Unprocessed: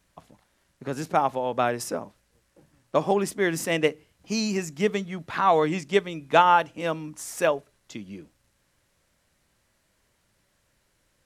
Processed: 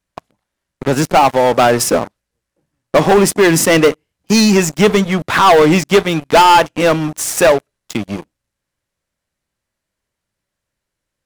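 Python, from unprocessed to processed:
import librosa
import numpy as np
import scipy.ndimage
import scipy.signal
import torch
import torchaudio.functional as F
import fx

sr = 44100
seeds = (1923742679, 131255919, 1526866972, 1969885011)

y = fx.leveller(x, sr, passes=5)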